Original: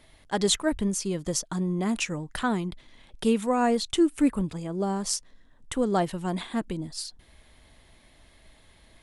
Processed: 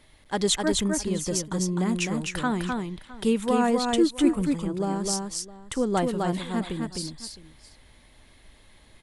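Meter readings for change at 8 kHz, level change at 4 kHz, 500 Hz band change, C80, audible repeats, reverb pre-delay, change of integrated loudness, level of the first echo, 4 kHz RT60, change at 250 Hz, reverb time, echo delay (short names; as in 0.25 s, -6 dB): +1.5 dB, +1.5 dB, +1.5 dB, none, 2, none, +1.5 dB, -3.5 dB, none, +1.5 dB, none, 0.256 s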